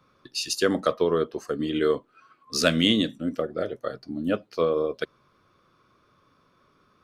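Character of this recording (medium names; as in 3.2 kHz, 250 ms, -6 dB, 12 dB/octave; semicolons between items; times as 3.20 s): noise floor -64 dBFS; spectral tilt -4.0 dB/octave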